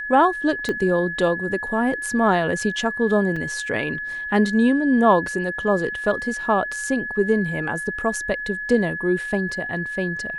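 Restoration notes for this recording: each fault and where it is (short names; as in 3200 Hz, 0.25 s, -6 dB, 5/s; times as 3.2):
tone 1700 Hz -27 dBFS
0.69 pop -13 dBFS
3.36 gap 4.6 ms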